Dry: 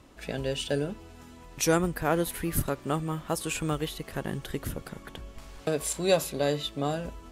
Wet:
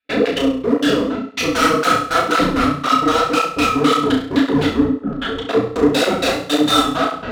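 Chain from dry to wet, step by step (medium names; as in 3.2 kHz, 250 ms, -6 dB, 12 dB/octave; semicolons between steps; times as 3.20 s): every event in the spectrogram widened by 480 ms; peaking EQ 1.5 kHz +13 dB 2.5 oct; in parallel at -1 dB: compression, threshold -21 dBFS, peak gain reduction 14 dB; on the sum: trance gate ".xx.x..x" 164 bpm -60 dB; small resonant body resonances 280/1300 Hz, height 13 dB, ringing for 70 ms; LFO low-pass square 3.9 Hz 410–4000 Hz; hard clipper -11.5 dBFS, distortion -7 dB; flutter echo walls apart 5.8 m, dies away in 0.5 s; on a send at -1 dB: reverberation, pre-delay 4 ms; on the sum: cancelling through-zero flanger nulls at 1.9 Hz, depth 7.2 ms; trim -3 dB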